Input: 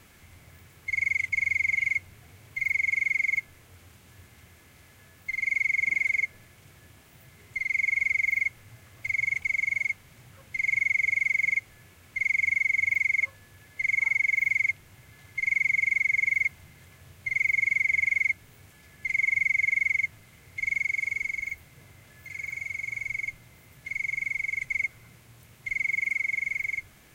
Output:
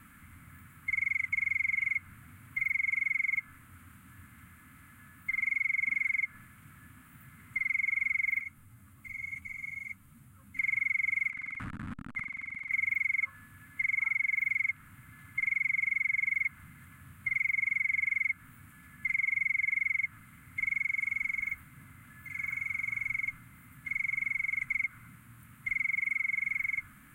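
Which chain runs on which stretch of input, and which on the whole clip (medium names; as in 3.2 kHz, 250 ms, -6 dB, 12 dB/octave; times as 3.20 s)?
8.41–10.57 s: peaking EQ 1.8 kHz -10 dB 1.6 oct + upward compressor, threshold -48 dBFS + three-phase chorus
11.30–12.71 s: send-on-delta sampling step -44.5 dBFS + low-pass 6.1 kHz + compressor with a negative ratio -37 dBFS
whole clip: dynamic bell 1.4 kHz, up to +5 dB, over -41 dBFS, Q 1.2; compression 2.5:1, threshold -27 dBFS; FFT filter 100 Hz 0 dB, 270 Hz +8 dB, 380 Hz -14 dB, 770 Hz -10 dB, 1.3 kHz +9 dB, 5.7 kHz -17 dB, 8.6 kHz +1 dB; trim -2 dB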